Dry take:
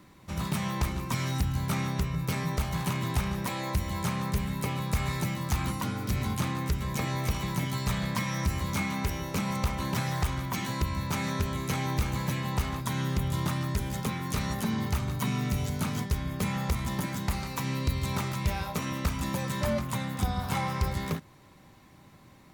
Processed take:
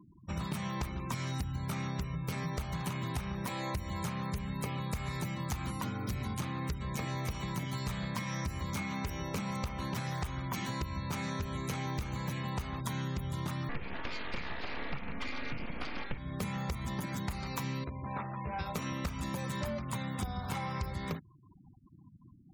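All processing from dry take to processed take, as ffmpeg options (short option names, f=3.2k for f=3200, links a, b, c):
-filter_complex "[0:a]asettb=1/sr,asplit=3[a][b][c];[a]atrim=end=13.694[d];[b]atrim=start=13.69:end=16.18,asetpts=PTS-STARTPTS,afade=t=in:d=0.004:c=qsin,afade=t=out:st=2.486:d=0.004:c=qsin,highshelf=f=3.5k:t=q:w=3:g=-13,aecho=1:1:2.2:0.89,atrim=end_sample=109809,aeval=exprs='abs(val(0))':c=same[e];[c]atrim=start=16.176[f];[d][e]acrossfade=d=0.004:c1=hsin:c2=qsin[g];[g][f]acrossfade=d=0.004:c1=qsin:c2=hsin,asettb=1/sr,asplit=3[h][i][j];[h]atrim=end=17.844[k];[i]atrim=start=17.84:end=18.59,asetpts=PTS-STARTPTS,afade=t=in:d=0.004:c=qsin,afade=t=out:st=0.746:d=0.004:c=qsin,highpass=f=480:p=1,adynamicsmooth=sensitivity=2.5:basefreq=700,asplit=2[l][m];[m]adelay=14,volume=-3dB[n];[l][n]amix=inputs=2:normalize=0,atrim=end_sample=33075[o];[j]atrim=start=18.586[p];[k][o]acrossfade=d=0.004:c1=hsin:c2=qsin[q];[q][p]acrossfade=d=0.004:c1=qsin:c2=hsin,afftfilt=real='re*gte(hypot(re,im),0.00708)':imag='im*gte(hypot(re,im),0.00708)':win_size=1024:overlap=0.75,acompressor=threshold=-33dB:ratio=6"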